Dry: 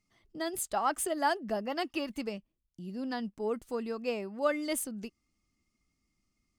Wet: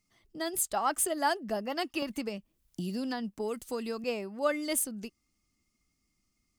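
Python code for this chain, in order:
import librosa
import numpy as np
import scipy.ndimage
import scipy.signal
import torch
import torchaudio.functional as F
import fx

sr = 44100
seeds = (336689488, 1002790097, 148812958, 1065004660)

y = fx.high_shelf(x, sr, hz=5200.0, db=7.0)
y = fx.band_squash(y, sr, depth_pct=100, at=(2.02, 4.04))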